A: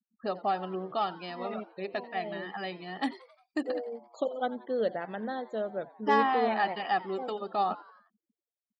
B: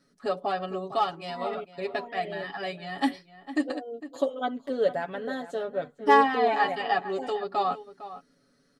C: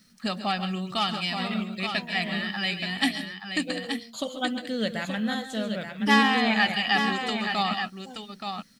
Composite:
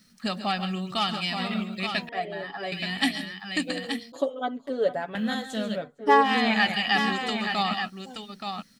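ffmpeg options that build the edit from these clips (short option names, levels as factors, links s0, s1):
-filter_complex "[1:a]asplit=3[s0][s1][s2];[2:a]asplit=4[s3][s4][s5][s6];[s3]atrim=end=2.092[s7];[s0]atrim=start=2.088:end=2.722[s8];[s4]atrim=start=2.718:end=4.122[s9];[s1]atrim=start=4.118:end=5.152[s10];[s5]atrim=start=5.148:end=5.83[s11];[s2]atrim=start=5.73:end=6.32[s12];[s6]atrim=start=6.22[s13];[s7][s8]acrossfade=d=0.004:c1=hsin:c2=hsin[s14];[s14][s9]acrossfade=d=0.004:c1=hsin:c2=hsin[s15];[s15][s10]acrossfade=d=0.004:c1=hsin:c2=hsin[s16];[s16][s11]acrossfade=d=0.004:c1=hsin:c2=hsin[s17];[s17][s12]acrossfade=d=0.1:c1=tri:c2=tri[s18];[s18][s13]acrossfade=d=0.1:c1=tri:c2=tri"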